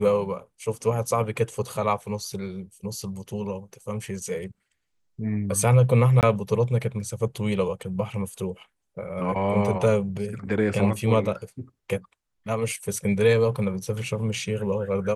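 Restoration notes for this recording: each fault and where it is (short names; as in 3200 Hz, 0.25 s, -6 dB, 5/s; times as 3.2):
6.21–6.23 gap 18 ms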